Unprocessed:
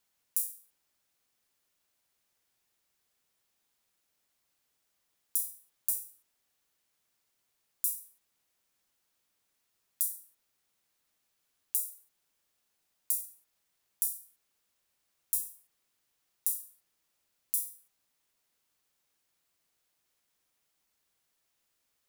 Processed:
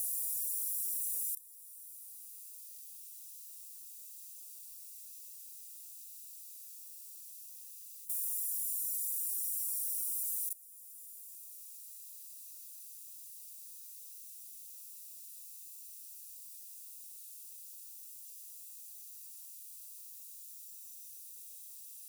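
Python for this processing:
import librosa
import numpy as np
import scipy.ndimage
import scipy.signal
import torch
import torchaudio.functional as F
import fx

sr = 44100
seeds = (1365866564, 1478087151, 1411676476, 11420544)

y = fx.bin_compress(x, sr, power=0.6)
y = fx.quant_float(y, sr, bits=4)
y = fx.paulstretch(y, sr, seeds[0], factor=8.5, window_s=0.05, from_s=16.57)
y = y + 10.0 ** (-4.5 / 20.0) * np.pad(y, (int(129 * sr / 1000.0), 0))[:len(y)]
y = fx.rev_plate(y, sr, seeds[1], rt60_s=4.1, hf_ratio=0.65, predelay_ms=110, drr_db=-1.0)
y = fx.level_steps(y, sr, step_db=21)
y = scipy.signal.sosfilt(scipy.signal.ellip(4, 1.0, 40, 2500.0, 'highpass', fs=sr, output='sos'), y)
y = fx.high_shelf(y, sr, hz=3500.0, db=8.5)
y = fx.band_squash(y, sr, depth_pct=40)
y = y * 10.0 ** (3.0 / 20.0)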